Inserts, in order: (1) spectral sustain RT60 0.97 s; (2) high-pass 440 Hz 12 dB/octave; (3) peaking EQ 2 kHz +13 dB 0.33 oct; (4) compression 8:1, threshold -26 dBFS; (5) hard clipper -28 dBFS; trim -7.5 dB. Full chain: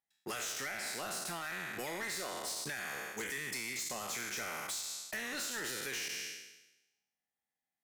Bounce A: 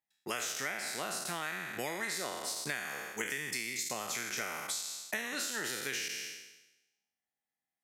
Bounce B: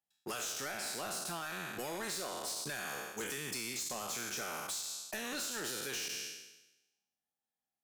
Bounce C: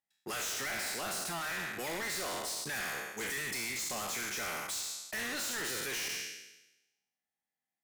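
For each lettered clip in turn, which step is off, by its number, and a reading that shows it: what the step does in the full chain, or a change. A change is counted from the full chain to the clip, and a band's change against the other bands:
5, distortion -9 dB; 3, 2 kHz band -4.0 dB; 4, mean gain reduction 7.0 dB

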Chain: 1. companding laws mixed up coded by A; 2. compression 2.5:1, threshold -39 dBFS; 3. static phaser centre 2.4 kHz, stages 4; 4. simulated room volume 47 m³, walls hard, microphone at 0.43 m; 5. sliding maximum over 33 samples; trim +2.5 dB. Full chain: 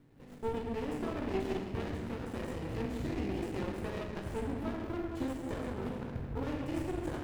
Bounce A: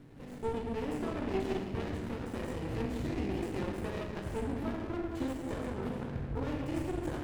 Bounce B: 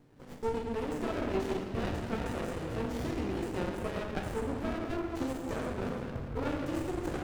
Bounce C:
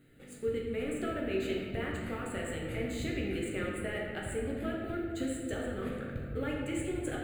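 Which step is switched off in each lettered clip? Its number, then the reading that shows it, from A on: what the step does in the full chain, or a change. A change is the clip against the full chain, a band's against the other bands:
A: 1, distortion -20 dB; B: 3, 125 Hz band -2.5 dB; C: 5, distortion -3 dB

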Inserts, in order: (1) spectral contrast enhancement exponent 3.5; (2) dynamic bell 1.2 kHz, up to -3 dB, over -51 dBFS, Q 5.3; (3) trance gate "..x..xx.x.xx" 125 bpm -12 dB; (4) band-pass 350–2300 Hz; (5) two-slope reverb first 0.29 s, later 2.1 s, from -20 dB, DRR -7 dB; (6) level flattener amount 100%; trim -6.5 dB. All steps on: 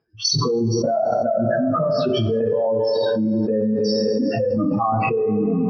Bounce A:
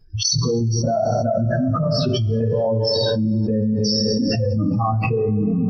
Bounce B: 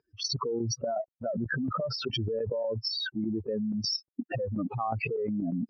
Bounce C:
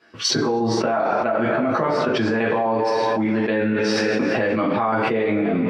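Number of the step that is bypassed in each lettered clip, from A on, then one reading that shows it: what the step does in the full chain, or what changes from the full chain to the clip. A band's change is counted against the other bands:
4, 125 Hz band +8.0 dB; 5, crest factor change +4.0 dB; 1, 2 kHz band +11.0 dB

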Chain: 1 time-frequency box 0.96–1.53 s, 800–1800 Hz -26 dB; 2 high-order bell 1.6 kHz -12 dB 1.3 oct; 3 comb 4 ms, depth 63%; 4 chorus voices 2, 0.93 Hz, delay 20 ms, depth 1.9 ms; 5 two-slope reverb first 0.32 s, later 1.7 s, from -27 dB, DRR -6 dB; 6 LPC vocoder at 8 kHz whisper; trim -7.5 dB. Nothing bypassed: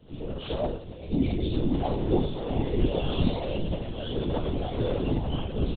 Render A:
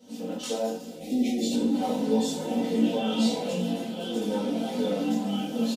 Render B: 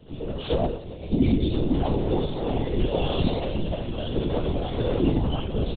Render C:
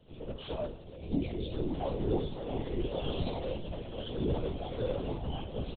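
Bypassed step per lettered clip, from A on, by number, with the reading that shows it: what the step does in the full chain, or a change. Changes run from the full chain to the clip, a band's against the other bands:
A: 6, 125 Hz band -12.0 dB; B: 4, loudness change +3.0 LU; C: 5, loudness change -7.0 LU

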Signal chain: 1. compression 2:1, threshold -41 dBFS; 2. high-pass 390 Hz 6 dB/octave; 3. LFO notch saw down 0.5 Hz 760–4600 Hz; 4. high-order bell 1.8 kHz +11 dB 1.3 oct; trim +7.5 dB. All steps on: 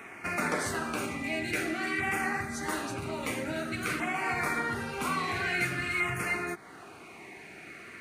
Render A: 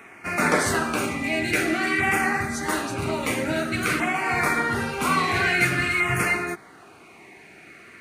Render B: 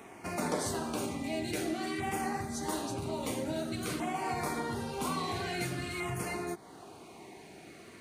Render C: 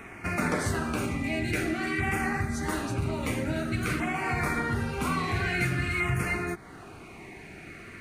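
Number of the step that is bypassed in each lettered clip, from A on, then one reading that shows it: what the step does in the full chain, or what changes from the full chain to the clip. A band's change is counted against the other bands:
1, mean gain reduction 6.5 dB; 4, loudness change -4.0 LU; 2, 125 Hz band +10.0 dB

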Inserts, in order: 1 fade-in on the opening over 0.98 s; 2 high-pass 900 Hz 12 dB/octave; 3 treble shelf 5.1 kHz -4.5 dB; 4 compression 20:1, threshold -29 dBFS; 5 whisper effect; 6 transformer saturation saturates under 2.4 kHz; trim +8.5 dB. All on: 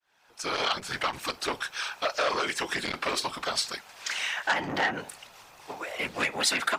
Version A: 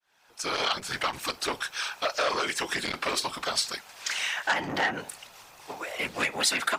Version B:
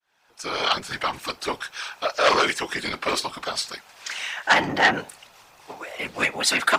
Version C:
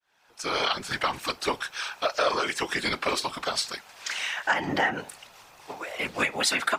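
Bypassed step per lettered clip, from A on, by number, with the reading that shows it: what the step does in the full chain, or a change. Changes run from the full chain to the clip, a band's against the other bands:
3, 8 kHz band +2.0 dB; 4, mean gain reduction 2.0 dB; 6, crest factor change -1.5 dB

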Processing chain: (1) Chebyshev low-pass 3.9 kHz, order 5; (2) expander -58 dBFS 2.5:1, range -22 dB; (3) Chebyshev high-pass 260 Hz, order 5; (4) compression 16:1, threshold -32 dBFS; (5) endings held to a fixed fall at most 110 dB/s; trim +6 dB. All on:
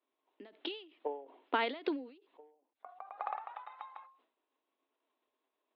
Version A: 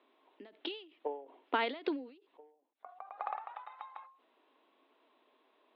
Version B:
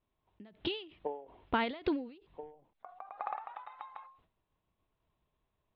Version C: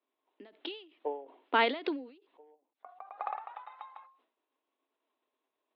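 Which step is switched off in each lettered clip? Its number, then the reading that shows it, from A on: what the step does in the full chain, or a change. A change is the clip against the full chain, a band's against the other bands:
2, momentary loudness spread change +1 LU; 3, 250 Hz band +4.0 dB; 4, mean gain reduction 4.0 dB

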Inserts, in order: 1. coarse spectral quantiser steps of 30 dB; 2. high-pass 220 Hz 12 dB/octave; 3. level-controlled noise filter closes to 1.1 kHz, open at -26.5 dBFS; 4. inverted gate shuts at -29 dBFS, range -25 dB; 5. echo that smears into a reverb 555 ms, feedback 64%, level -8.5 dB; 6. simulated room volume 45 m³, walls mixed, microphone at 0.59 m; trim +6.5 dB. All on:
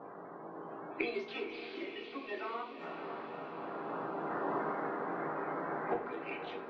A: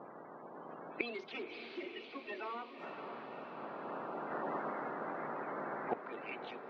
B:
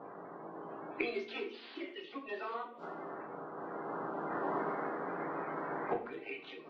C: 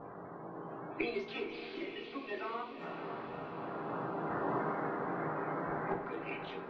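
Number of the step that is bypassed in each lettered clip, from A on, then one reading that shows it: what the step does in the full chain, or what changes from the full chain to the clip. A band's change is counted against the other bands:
6, crest factor change +3.0 dB; 5, echo-to-direct 1.0 dB to -0.5 dB; 2, 125 Hz band +7.0 dB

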